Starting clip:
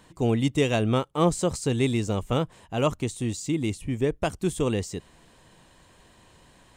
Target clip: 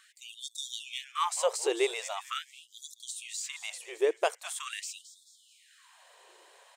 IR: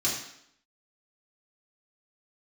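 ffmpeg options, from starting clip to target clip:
-filter_complex "[0:a]asplit=5[s0][s1][s2][s3][s4];[s1]adelay=218,afreqshift=-140,volume=0.211[s5];[s2]adelay=436,afreqshift=-280,volume=0.0891[s6];[s3]adelay=654,afreqshift=-420,volume=0.0372[s7];[s4]adelay=872,afreqshift=-560,volume=0.0157[s8];[s0][s5][s6][s7][s8]amix=inputs=5:normalize=0,afftfilt=real='re*gte(b*sr/1024,330*pow(3400/330,0.5+0.5*sin(2*PI*0.43*pts/sr)))':imag='im*gte(b*sr/1024,330*pow(3400/330,0.5+0.5*sin(2*PI*0.43*pts/sr)))':win_size=1024:overlap=0.75"

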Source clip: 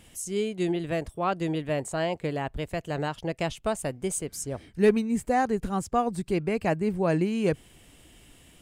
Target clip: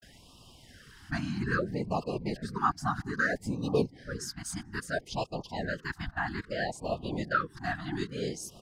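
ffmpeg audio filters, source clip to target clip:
-filter_complex "[0:a]areverse,asplit=2[s0][s1];[s1]adelay=441,lowpass=f=970:p=1,volume=0.075,asplit=2[s2][s3];[s3]adelay=441,lowpass=f=970:p=1,volume=0.49,asplit=2[s4][s5];[s5]adelay=441,lowpass=f=970:p=1,volume=0.49[s6];[s2][s4][s6]amix=inputs=3:normalize=0[s7];[s0][s7]amix=inputs=2:normalize=0,afftfilt=real='hypot(re,im)*cos(2*PI*random(0))':imag='hypot(re,im)*sin(2*PI*random(1))':win_size=512:overlap=0.75,firequalizer=gain_entry='entry(130,0);entry(350,-4);entry(1600,15);entry(2300,-5);entry(4900,10);entry(7600,-6);entry(13000,-5)':delay=0.05:min_phase=1,asplit=2[s8][s9];[s9]acompressor=threshold=0.00562:ratio=6,volume=0.944[s10];[s8][s10]amix=inputs=2:normalize=0,afftfilt=real='re*(1-between(b*sr/1024,450*pow(1800/450,0.5+0.5*sin(2*PI*0.61*pts/sr))/1.41,450*pow(1800/450,0.5+0.5*sin(2*PI*0.61*pts/sr))*1.41))':imag='im*(1-between(b*sr/1024,450*pow(1800/450,0.5+0.5*sin(2*PI*0.61*pts/sr))/1.41,450*pow(1800/450,0.5+0.5*sin(2*PI*0.61*pts/sr))*1.41))':win_size=1024:overlap=0.75"

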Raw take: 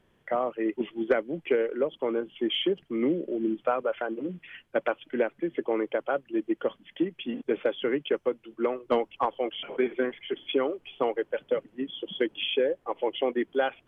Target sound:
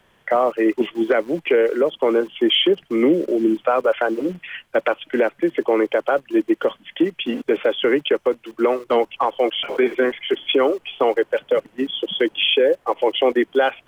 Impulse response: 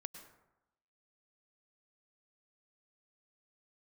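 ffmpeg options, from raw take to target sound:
-filter_complex "[0:a]bass=f=250:g=-8,treble=f=4000:g=0,acrossover=split=270|460[s0][s1][s2];[s1]aeval=exprs='val(0)*gte(abs(val(0)),0.00224)':c=same[s3];[s0][s3][s2]amix=inputs=3:normalize=0,alimiter=level_in=9.44:limit=0.891:release=50:level=0:latency=1,volume=0.447"

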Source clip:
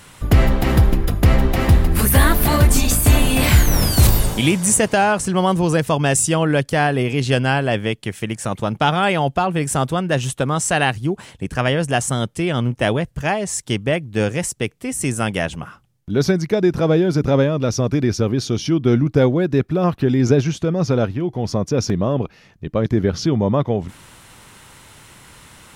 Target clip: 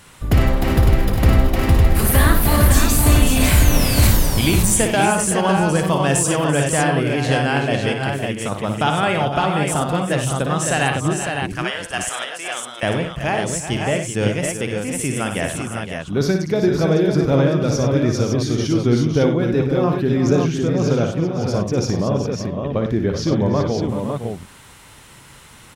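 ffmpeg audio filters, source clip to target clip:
-filter_complex "[0:a]asettb=1/sr,asplit=3[s0][s1][s2];[s0]atrim=end=11.534[s3];[s1]atrim=start=11.53:end=12.83,asetpts=PTS-STARTPTS,afade=t=in:d=0.004:c=qsin,afade=t=out:st=1.296:d=0.004:c=qsin,highpass=910[s4];[s2]atrim=start=12.826[s5];[s3][s4]acrossfade=d=0.004:c1=hsin:c2=qsin[s6];[s6][s5]acrossfade=d=0.004:c1=qsin:c2=hsin,asplit=2[s7][s8];[s8]aecho=0:1:58|96|338|382|512|556:0.473|0.266|0.112|0.299|0.299|0.562[s9];[s7][s9]amix=inputs=2:normalize=0,volume=0.75"

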